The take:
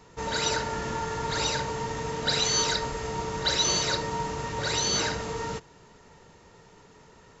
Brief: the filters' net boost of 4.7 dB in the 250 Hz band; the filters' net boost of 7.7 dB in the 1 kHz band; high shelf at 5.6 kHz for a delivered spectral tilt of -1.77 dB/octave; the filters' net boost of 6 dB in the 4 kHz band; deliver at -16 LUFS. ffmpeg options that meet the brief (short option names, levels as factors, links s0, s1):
-af "equalizer=f=250:t=o:g=6,equalizer=f=1000:t=o:g=8,equalizer=f=4000:t=o:g=5,highshelf=f=5600:g=3.5,volume=2"